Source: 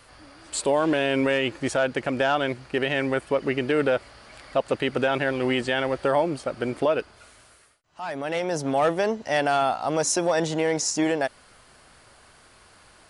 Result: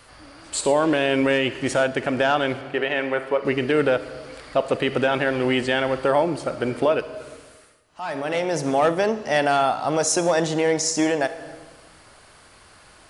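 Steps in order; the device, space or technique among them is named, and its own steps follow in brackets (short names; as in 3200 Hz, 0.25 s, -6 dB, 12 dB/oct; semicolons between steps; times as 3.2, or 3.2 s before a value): 2.61–3.45 tone controls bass -13 dB, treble -11 dB; compressed reverb return (on a send at -6 dB: reverb RT60 1.0 s, pre-delay 38 ms + compressor, threshold -27 dBFS, peak gain reduction 11 dB); on the sum: gain +2.5 dB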